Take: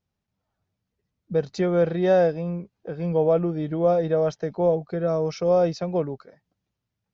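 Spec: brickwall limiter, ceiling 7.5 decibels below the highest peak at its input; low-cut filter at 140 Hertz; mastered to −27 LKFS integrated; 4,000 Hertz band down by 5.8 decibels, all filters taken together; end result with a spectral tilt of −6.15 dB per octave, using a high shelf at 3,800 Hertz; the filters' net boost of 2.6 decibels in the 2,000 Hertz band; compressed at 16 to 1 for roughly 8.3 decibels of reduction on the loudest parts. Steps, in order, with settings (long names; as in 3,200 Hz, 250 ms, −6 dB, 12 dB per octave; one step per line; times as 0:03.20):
high-pass filter 140 Hz
parametric band 2,000 Hz +5.5 dB
high-shelf EQ 3,800 Hz −3.5 dB
parametric band 4,000 Hz −6.5 dB
downward compressor 16 to 1, threshold −23 dBFS
level +5 dB
brickwall limiter −18 dBFS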